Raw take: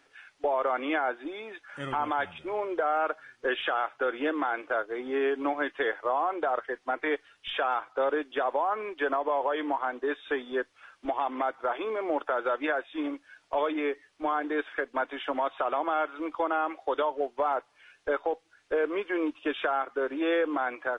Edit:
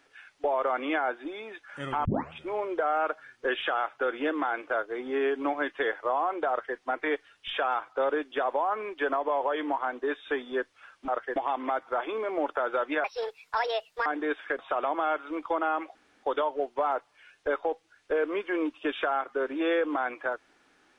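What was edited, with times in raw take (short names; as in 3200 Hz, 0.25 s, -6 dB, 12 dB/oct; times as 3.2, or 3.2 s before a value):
2.05 tape start 0.28 s
6.49–6.77 copy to 11.08
12.76–14.34 speed 155%
14.87–15.48 cut
16.84 insert room tone 0.28 s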